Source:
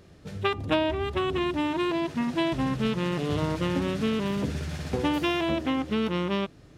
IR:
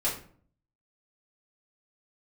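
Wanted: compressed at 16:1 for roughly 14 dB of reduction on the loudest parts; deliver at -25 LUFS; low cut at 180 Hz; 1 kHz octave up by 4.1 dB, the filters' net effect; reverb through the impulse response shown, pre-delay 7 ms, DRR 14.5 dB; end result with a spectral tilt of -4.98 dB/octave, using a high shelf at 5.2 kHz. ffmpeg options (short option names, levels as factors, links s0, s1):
-filter_complex "[0:a]highpass=180,equalizer=f=1000:t=o:g=4.5,highshelf=f=5200:g=6.5,acompressor=threshold=0.0251:ratio=16,asplit=2[s0][s1];[1:a]atrim=start_sample=2205,adelay=7[s2];[s1][s2]afir=irnorm=-1:irlink=0,volume=0.075[s3];[s0][s3]amix=inputs=2:normalize=0,volume=3.76"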